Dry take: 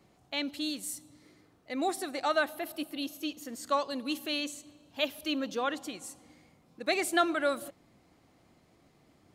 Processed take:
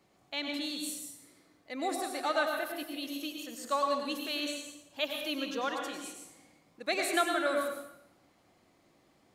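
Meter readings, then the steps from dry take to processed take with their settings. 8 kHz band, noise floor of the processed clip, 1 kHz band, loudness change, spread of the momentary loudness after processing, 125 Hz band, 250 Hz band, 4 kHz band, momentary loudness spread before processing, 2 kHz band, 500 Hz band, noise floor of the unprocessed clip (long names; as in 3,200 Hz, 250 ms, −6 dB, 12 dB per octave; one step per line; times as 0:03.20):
0.0 dB, −67 dBFS, 0.0 dB, −1.0 dB, 15 LU, can't be measured, −2.5 dB, 0.0 dB, 14 LU, −0.5 dB, −0.5 dB, −65 dBFS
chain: low-shelf EQ 250 Hz −8 dB
dense smooth reverb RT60 0.8 s, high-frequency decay 0.85×, pre-delay 85 ms, DRR 2 dB
level −2 dB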